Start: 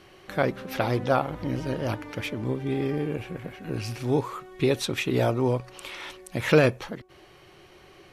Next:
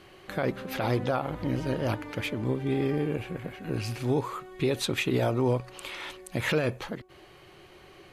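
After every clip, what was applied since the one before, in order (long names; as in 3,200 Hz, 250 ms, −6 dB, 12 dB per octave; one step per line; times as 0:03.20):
brickwall limiter −17 dBFS, peak gain reduction 9.5 dB
notch filter 5,600 Hz, Q 11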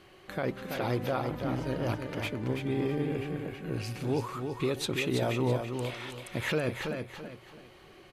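repeating echo 330 ms, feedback 31%, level −6 dB
level −3.5 dB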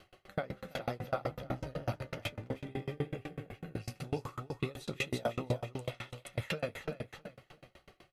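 flanger 0.33 Hz, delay 9.2 ms, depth 6.1 ms, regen −53%
convolution reverb RT60 0.90 s, pre-delay 3 ms, DRR 18 dB
tremolo with a ramp in dB decaying 8 Hz, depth 31 dB
level +5.5 dB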